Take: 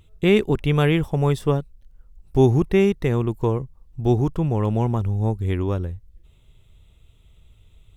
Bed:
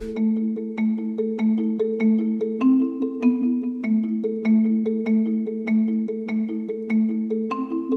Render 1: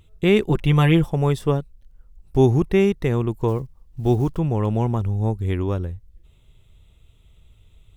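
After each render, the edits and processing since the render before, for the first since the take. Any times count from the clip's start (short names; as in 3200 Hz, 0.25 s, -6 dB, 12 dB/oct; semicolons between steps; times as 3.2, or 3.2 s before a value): 0.48–1.1 comb 5.8 ms, depth 67%; 3.48–4.4 block floating point 7-bit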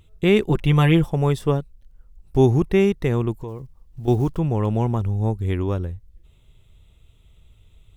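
3.41–4.08 compressor 3:1, threshold -31 dBFS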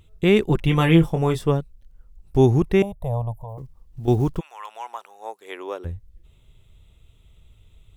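0.66–1.43 doubler 24 ms -7 dB; 2.82–3.58 EQ curve 110 Hz 0 dB, 200 Hz -12 dB, 350 Hz -29 dB, 610 Hz +10 dB, 990 Hz 0 dB, 1400 Hz -26 dB, 2100 Hz -26 dB, 3600 Hz -14 dB, 5100 Hz -27 dB, 10000 Hz -2 dB; 4.39–5.84 HPF 1200 Hz -> 380 Hz 24 dB/oct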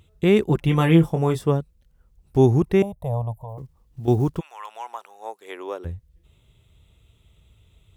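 dynamic EQ 2900 Hz, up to -4 dB, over -40 dBFS, Q 0.83; HPF 56 Hz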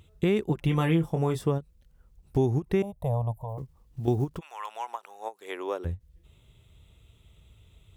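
compressor 3:1, threshold -23 dBFS, peak gain reduction 10 dB; ending taper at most 440 dB/s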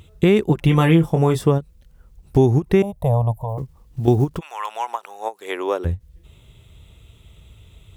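gain +9.5 dB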